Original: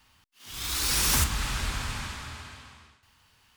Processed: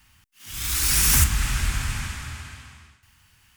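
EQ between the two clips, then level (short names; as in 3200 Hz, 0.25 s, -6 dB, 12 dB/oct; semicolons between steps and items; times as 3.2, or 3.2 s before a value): ten-band EQ 250 Hz -4 dB, 500 Hz -11 dB, 1000 Hz -7 dB, 4000 Hz -8 dB; +8.0 dB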